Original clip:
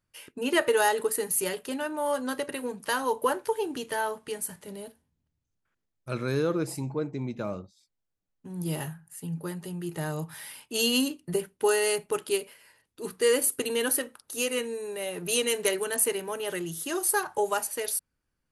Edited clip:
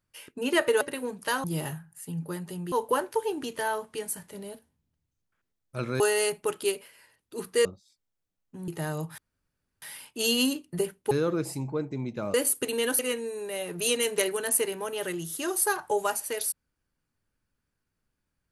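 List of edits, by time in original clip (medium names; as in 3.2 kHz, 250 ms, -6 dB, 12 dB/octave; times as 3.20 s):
0.81–2.42 s: delete
6.33–7.56 s: swap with 11.66–13.31 s
8.59–9.87 s: move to 3.05 s
10.37 s: insert room tone 0.64 s
13.96–14.46 s: delete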